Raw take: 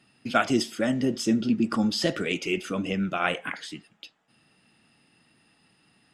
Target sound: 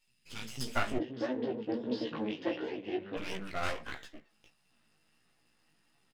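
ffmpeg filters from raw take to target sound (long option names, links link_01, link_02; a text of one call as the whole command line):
ffmpeg -i in.wav -filter_complex "[0:a]equalizer=frequency=1800:width=1.5:gain=3,asplit=2[link_01][link_02];[link_02]adelay=13,volume=-10.5dB[link_03];[link_01][link_03]amix=inputs=2:normalize=0,acrossover=split=210|2300[link_04][link_05][link_06];[link_04]adelay=70[link_07];[link_05]adelay=410[link_08];[link_07][link_08][link_06]amix=inputs=3:normalize=0,aeval=exprs='max(val(0),0)':channel_layout=same,flanger=delay=15.5:depth=3.8:speed=1.5,asplit=3[link_09][link_10][link_11];[link_09]afade=type=out:start_time=0.98:duration=0.02[link_12];[link_10]highpass=frequency=120:width=0.5412,highpass=frequency=120:width=1.3066,equalizer=frequency=180:width_type=q:width=4:gain=-9,equalizer=frequency=310:width_type=q:width=4:gain=7,equalizer=frequency=490:width_type=q:width=4:gain=6,equalizer=frequency=1300:width_type=q:width=4:gain=-8,equalizer=frequency=2300:width_type=q:width=4:gain=-7,lowpass=frequency=3800:width=0.5412,lowpass=frequency=3800:width=1.3066,afade=type=in:start_time=0.98:duration=0.02,afade=type=out:start_time=3.16:duration=0.02[link_13];[link_11]afade=type=in:start_time=3.16:duration=0.02[link_14];[link_12][link_13][link_14]amix=inputs=3:normalize=0,volume=-2dB" out.wav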